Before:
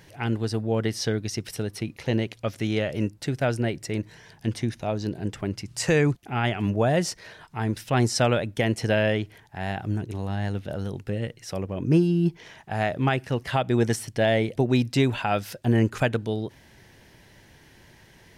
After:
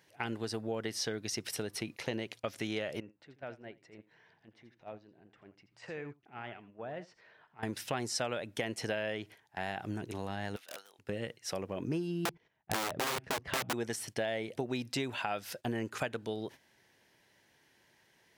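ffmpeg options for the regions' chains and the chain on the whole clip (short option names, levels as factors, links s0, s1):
-filter_complex "[0:a]asettb=1/sr,asplit=3[s0][s1][s2];[s0]atrim=end=3.004[s3];[s1]atrim=start=3:end=7.63,asetpts=PTS-STARTPTS,afade=t=in:d=0.004:c=qsin,afade=t=out:st=4.626:d=0.004:c=qsin,lowpass=2600,acompressor=threshold=0.00562:ratio=2.5:attack=3.2:release=140:knee=1:detection=peak,aecho=1:1:83:0.237,atrim=end_sample=204183[s4];[s2]atrim=start=7.626[s5];[s3][s4]acrossfade=d=0.004:c1=hsin:c2=qsin[s6];[s6][s5]acrossfade=d=0.004:c1=qsin:c2=hsin,asettb=1/sr,asplit=3[s7][s8][s9];[s7]atrim=end=10.564[s10];[s8]atrim=start=10.56:end=10.99,asetpts=PTS-STARTPTS,afade=t=in:d=0.004:c=qsin,afade=t=out:st=0.426:d=0.004:c=qsin,highpass=1000,highshelf=f=7100:g=4,aeval=exprs='(mod(53.1*val(0)+1,2)-1)/53.1':c=same[s11];[s9]atrim=start=10.986[s12];[s10][s11]acrossfade=d=0.004:c1=hsin:c2=qsin[s13];[s13][s12]acrossfade=d=0.004:c1=qsin:c2=hsin,asettb=1/sr,asplit=3[s14][s15][s16];[s14]atrim=end=12.254[s17];[s15]atrim=start=12.25:end=13.73,asetpts=PTS-STARTPTS,afade=t=in:d=0.004:c=qsin,afade=t=out:st=1.476:d=0.004:c=qsin,aemphasis=mode=reproduction:type=riaa,agate=range=0.141:threshold=0.0141:ratio=16:release=100:detection=peak,aeval=exprs='(mod(5.62*val(0)+1,2)-1)/5.62':c=same[s18];[s16]atrim=start=13.726[s19];[s17][s18]acrossfade=d=0.004:c1=hsin:c2=qsin[s20];[s20][s19]acrossfade=d=0.004:c1=qsin:c2=hsin,highpass=f=410:p=1,agate=range=0.251:threshold=0.00631:ratio=16:detection=peak,acompressor=threshold=0.0224:ratio=4"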